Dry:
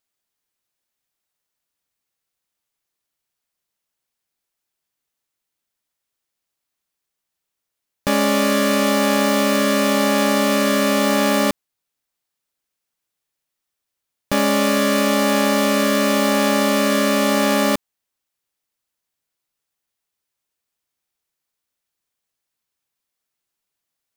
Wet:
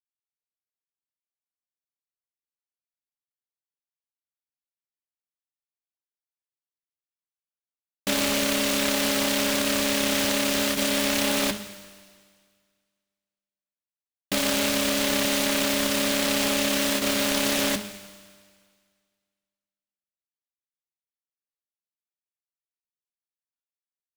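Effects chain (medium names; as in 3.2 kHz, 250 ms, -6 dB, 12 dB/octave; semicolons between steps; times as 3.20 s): gate with hold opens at -9 dBFS; feedback comb 99 Hz, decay 1.9 s, mix 80%; de-hum 52.22 Hz, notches 38; delay time shaken by noise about 2.7 kHz, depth 0.24 ms; trim +7 dB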